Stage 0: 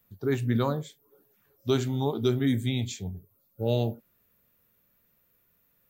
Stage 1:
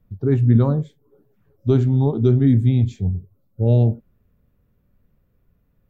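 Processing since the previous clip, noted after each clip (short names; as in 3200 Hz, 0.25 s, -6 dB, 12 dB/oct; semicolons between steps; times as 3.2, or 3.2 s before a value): tilt -4.5 dB/oct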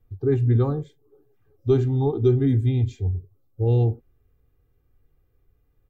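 comb 2.5 ms, depth 89%; gain -5 dB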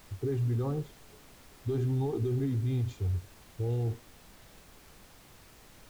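limiter -20.5 dBFS, peak gain reduction 12 dB; added noise pink -51 dBFS; gain -4 dB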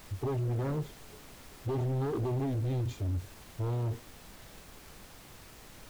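wavefolder -28 dBFS; sample leveller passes 1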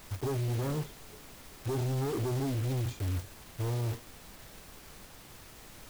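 block floating point 3-bit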